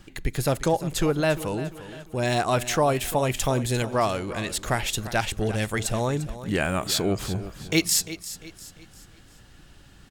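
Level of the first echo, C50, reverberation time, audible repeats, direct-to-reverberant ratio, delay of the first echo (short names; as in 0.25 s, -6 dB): -14.0 dB, none, none, 3, none, 0.348 s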